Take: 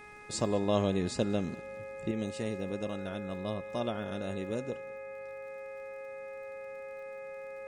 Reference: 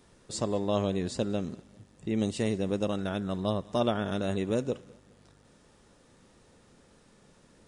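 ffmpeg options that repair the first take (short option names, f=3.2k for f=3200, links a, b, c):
-af "adeclick=t=4,bandreject=f=418.1:t=h:w=4,bandreject=f=836.2:t=h:w=4,bandreject=f=1.2543k:t=h:w=4,bandreject=f=1.6724k:t=h:w=4,bandreject=f=2.0905k:t=h:w=4,bandreject=f=2.5086k:t=h:w=4,bandreject=f=540:w=30,asetnsamples=n=441:p=0,asendcmd='2.11 volume volume 7dB',volume=0dB"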